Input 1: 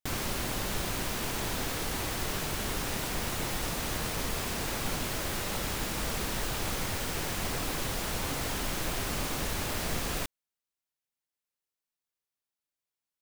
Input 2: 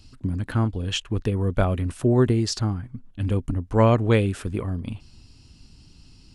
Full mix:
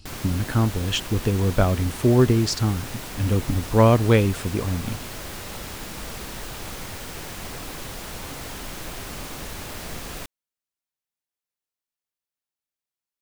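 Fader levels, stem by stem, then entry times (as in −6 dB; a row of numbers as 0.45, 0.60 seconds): −2.0, +2.0 decibels; 0.00, 0.00 seconds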